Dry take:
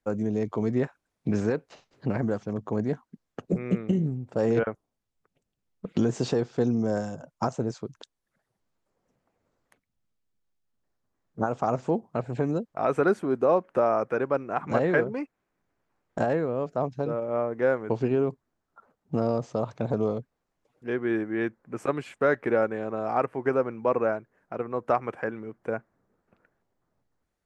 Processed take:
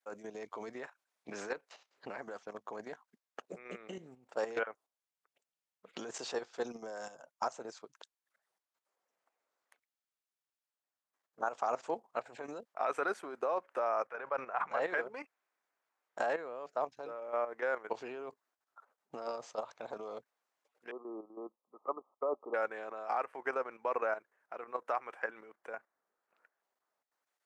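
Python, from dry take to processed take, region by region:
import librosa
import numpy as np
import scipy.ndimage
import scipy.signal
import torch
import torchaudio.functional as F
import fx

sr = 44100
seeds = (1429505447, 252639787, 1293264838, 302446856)

y = fx.chain(x, sr, fx.lowpass(hz=1800.0, slope=6),
    fx.peak_eq(hz=310.0, db=-12.0, octaves=0.79),
    fx.sustainer(db_per_s=69.0), at=(14.07, 14.82))
y = fx.chain(y, sr, fx.brickwall_bandpass(low_hz=160.0, high_hz=1300.0),
    fx.air_absorb(metres=190.0),
    fx.band_widen(depth_pct=100), at=(20.91, 22.54))
y = scipy.signal.sosfilt(scipy.signal.butter(2, 760.0, 'highpass', fs=sr, output='sos'), y)
y = fx.level_steps(y, sr, step_db=11)
y = y * librosa.db_to_amplitude(1.0)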